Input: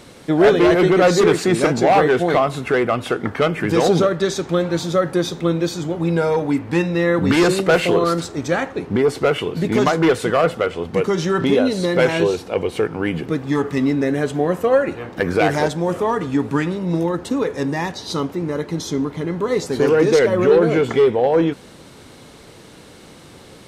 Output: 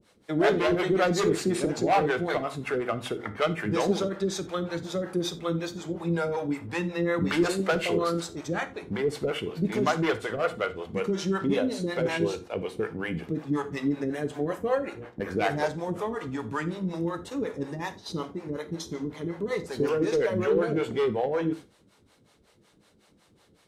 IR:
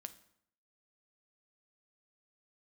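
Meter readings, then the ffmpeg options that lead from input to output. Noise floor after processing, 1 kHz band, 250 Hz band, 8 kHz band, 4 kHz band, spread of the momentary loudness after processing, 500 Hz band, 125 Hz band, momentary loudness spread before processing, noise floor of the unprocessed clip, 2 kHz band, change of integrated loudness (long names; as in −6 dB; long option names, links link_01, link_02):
−63 dBFS, −9.5 dB, −10.0 dB, −9.0 dB, −9.0 dB, 9 LU, −11.0 dB, −10.0 dB, 9 LU, −43 dBFS, −9.0 dB, −10.5 dB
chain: -filter_complex "[0:a]acrossover=split=460[link_01][link_02];[link_01]aeval=exprs='val(0)*(1-1/2+1/2*cos(2*PI*5.4*n/s))':channel_layout=same[link_03];[link_02]aeval=exprs='val(0)*(1-1/2-1/2*cos(2*PI*5.4*n/s))':channel_layout=same[link_04];[link_03][link_04]amix=inputs=2:normalize=0,agate=range=-10dB:threshold=-37dB:ratio=16:detection=peak[link_05];[1:a]atrim=start_sample=2205,atrim=end_sample=4410[link_06];[link_05][link_06]afir=irnorm=-1:irlink=0"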